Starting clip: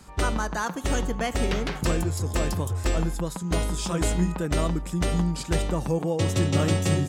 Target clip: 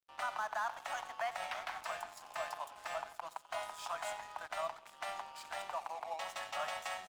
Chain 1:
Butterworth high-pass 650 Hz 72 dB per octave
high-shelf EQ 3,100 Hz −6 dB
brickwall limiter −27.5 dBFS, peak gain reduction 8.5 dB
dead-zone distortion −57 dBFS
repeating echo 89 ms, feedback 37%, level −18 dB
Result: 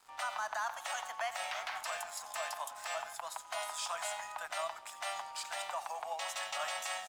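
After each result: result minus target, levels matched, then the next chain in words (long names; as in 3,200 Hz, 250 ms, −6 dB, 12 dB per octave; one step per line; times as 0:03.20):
8,000 Hz band +7.0 dB; dead-zone distortion: distortion −7 dB
Butterworth high-pass 650 Hz 72 dB per octave
high-shelf EQ 3,100 Hz −18 dB
brickwall limiter −27.5 dBFS, peak gain reduction 6 dB
dead-zone distortion −57 dBFS
repeating echo 89 ms, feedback 37%, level −18 dB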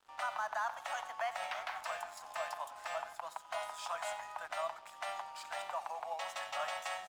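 dead-zone distortion: distortion −6 dB
Butterworth high-pass 650 Hz 72 dB per octave
high-shelf EQ 3,100 Hz −18 dB
brickwall limiter −27.5 dBFS, peak gain reduction 6 dB
dead-zone distortion −50.5 dBFS
repeating echo 89 ms, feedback 37%, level −18 dB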